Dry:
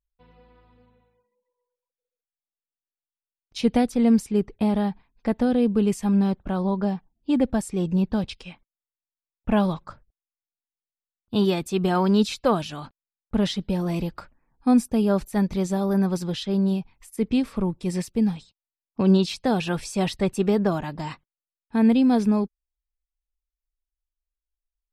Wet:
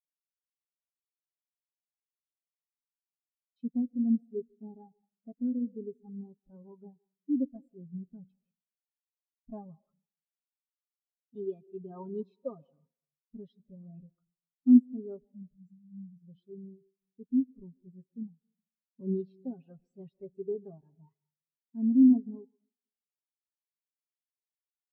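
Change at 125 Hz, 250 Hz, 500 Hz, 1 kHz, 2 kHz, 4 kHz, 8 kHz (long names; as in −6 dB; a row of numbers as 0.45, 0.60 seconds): −20.5 dB, −8.0 dB, −16.0 dB, below −25 dB, below −40 dB, below −40 dB, below −40 dB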